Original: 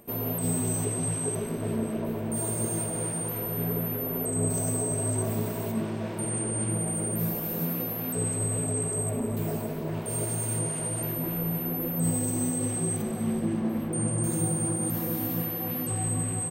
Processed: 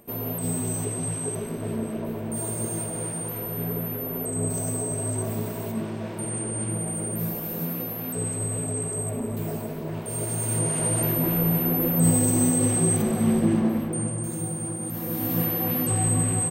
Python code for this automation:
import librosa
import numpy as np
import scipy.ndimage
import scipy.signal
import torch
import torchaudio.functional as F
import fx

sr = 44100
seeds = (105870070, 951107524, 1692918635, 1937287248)

y = fx.gain(x, sr, db=fx.line((10.14, 0.0), (10.89, 7.0), (13.57, 7.0), (14.25, -3.0), (14.91, -3.0), (15.43, 6.0)))